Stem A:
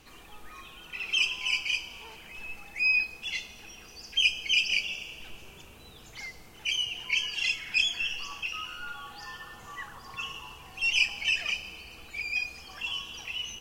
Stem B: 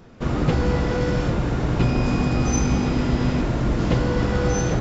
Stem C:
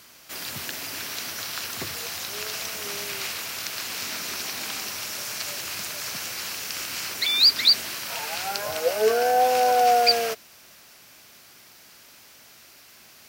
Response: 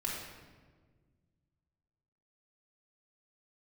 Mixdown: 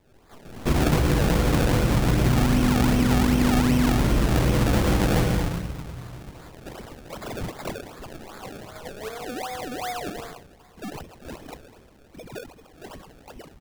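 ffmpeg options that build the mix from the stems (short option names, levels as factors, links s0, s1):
-filter_complex "[0:a]alimiter=limit=0.0891:level=0:latency=1:release=496,volume=0.422,asplit=3[s0][s1][s2];[s1]volume=0.2[s3];[s2]volume=0.224[s4];[1:a]adelay=450,volume=1.19,asplit=3[s5][s6][s7];[s6]volume=0.562[s8];[s7]volume=0.631[s9];[2:a]equalizer=f=440:t=o:w=2:g=-8.5,volume=0.335,asplit=2[s10][s11];[s11]volume=0.316[s12];[3:a]atrim=start_sample=2205[s13];[s3][s8][s12]amix=inputs=3:normalize=0[s14];[s14][s13]afir=irnorm=-1:irlink=0[s15];[s4][s9]amix=inputs=2:normalize=0,aecho=0:1:117|234|351|468|585|702|819:1|0.48|0.23|0.111|0.0531|0.0255|0.0122[s16];[s0][s5][s10][s15][s16]amix=inputs=5:normalize=0,lowpass=f=3600:w=0.5412,lowpass=f=3600:w=1.3066,acrusher=samples=30:mix=1:aa=0.000001:lfo=1:lforange=30:lforate=2.6,acompressor=threshold=0.141:ratio=5"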